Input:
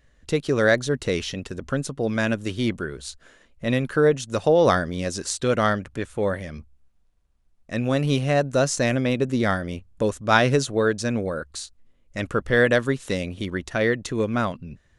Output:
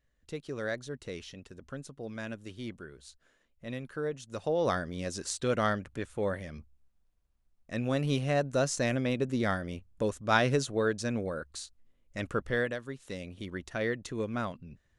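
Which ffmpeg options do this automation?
-af "volume=1.5dB,afade=t=in:st=4.12:d=1.14:silence=0.375837,afade=t=out:st=12.4:d=0.38:silence=0.266073,afade=t=in:st=12.78:d=0.83:silence=0.354813"

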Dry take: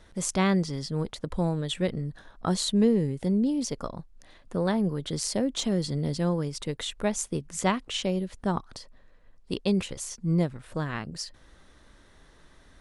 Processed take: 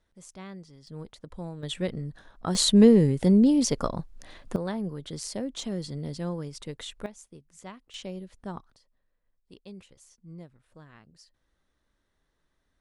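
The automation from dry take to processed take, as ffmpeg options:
-af "asetnsamples=n=441:p=0,asendcmd='0.87 volume volume -11dB;1.63 volume volume -2.5dB;2.55 volume volume 6dB;4.56 volume volume -6dB;7.06 volume volume -18.5dB;7.94 volume volume -10dB;8.7 volume volume -20dB',volume=-19dB"

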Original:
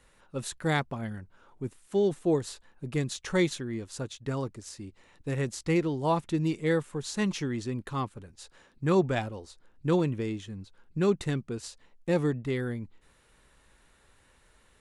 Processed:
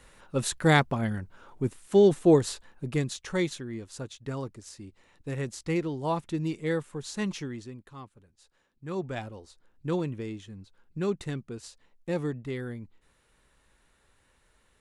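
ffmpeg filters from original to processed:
-af "volume=15.5dB,afade=t=out:st=2.42:d=0.83:silence=0.354813,afade=t=out:st=7.32:d=0.5:silence=0.298538,afade=t=in:st=8.84:d=0.46:silence=0.354813"

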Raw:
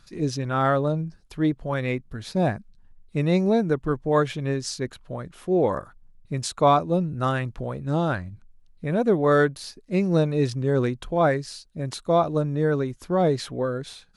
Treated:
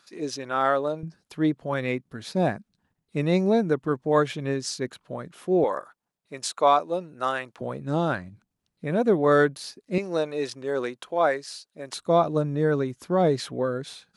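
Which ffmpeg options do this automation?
-af "asetnsamples=n=441:p=0,asendcmd='1.03 highpass f 160;5.64 highpass f 460;7.61 highpass f 160;9.98 highpass f 450;11.94 highpass f 130',highpass=370"

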